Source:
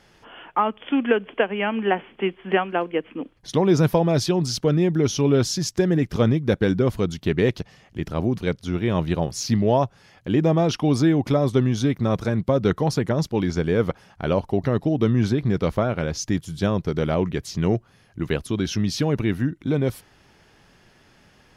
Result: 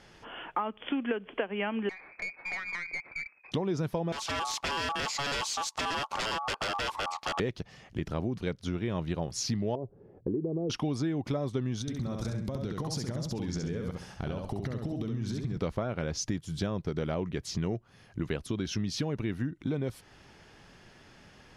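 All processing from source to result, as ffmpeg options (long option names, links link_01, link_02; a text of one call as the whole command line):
ffmpeg -i in.wav -filter_complex "[0:a]asettb=1/sr,asplit=3[link_01][link_02][link_03];[link_01]atrim=end=1.894[link_04];[link_02]atrim=start=1.89:end=3.52,asetpts=PTS-STARTPTS,afade=type=in:duration=0.004:curve=qsin,afade=type=out:start_time=1.626:duration=0.004:curve=qsin,lowpass=frequency=2200:width_type=q:width=0.5098,lowpass=frequency=2200:width_type=q:width=0.6013,lowpass=frequency=2200:width_type=q:width=0.9,lowpass=frequency=2200:width_type=q:width=2.563,afreqshift=-2600,acompressor=threshold=-30dB:ratio=6:attack=3.2:release=140:knee=1:detection=peak,aeval=exprs='(tanh(25.1*val(0)+0.35)-tanh(0.35))/25.1':channel_layout=same[link_05];[link_03]atrim=start=3.516[link_06];[link_04][link_05]acrossfade=duration=0.004:curve1=hsin:curve2=qsin[link_07];[link_07][link_06]acrossfade=duration=0.004:curve1=qsin:curve2=hsin,asettb=1/sr,asplit=3[link_08][link_09][link_10];[link_08]atrim=end=4.124[link_11];[link_09]atrim=start=4.12:end=7.4,asetpts=PTS-STARTPTS,afade=type=in:duration=0.004:curve=qsin,afade=type=out:start_time=3.276:duration=0.004:curve=qsin,aeval=exprs='val(0)*sin(2*PI*990*n/s)':channel_layout=same,aeval=exprs='0.075*(abs(mod(val(0)/0.075+3,4)-2)-1)':channel_layout=same[link_12];[link_10]atrim=start=7.396[link_13];[link_11][link_12]acrossfade=duration=0.004:curve1=hsin:curve2=qsin[link_14];[link_14][link_13]acrossfade=duration=0.004:curve1=qsin:curve2=hsin,asettb=1/sr,asplit=3[link_15][link_16][link_17];[link_15]atrim=end=9.754[link_18];[link_16]atrim=start=9.75:end=10.7,asetpts=PTS-STARTPTS,afade=type=in:duration=0.004:curve=qsin,afade=type=out:start_time=0.946:duration=0.004:curve=qsin,acompressor=threshold=-24dB:ratio=5:attack=3.2:release=140:knee=1:detection=peak,lowpass=frequency=410:width_type=q:width=3.8[link_19];[link_17]atrim=start=10.696[link_20];[link_18][link_19]acrossfade=duration=0.004:curve1=hsin:curve2=qsin[link_21];[link_21][link_20]acrossfade=duration=0.004:curve1=qsin:curve2=hsin,asettb=1/sr,asplit=3[link_22][link_23][link_24];[link_22]atrim=end=11.814[link_25];[link_23]atrim=start=11.81:end=15.57,asetpts=PTS-STARTPTS,afade=type=in:duration=0.004:curve=qsin,afade=type=out:start_time=3.756:duration=0.004:curve=qsin,acompressor=threshold=-31dB:ratio=10:attack=3.2:release=140:knee=1:detection=peak,bass=frequency=250:gain=5,treble=frequency=4000:gain=8,aecho=1:1:67|134|201|268:0.631|0.177|0.0495|0.0139,atrim=end_sample=165816[link_26];[link_24]atrim=start=15.566[link_27];[link_25][link_26]acrossfade=duration=0.004:curve1=hsin:curve2=qsin[link_28];[link_28][link_27]acrossfade=duration=0.004:curve1=qsin:curve2=hsin,lowpass=10000,acompressor=threshold=-30dB:ratio=4" out.wav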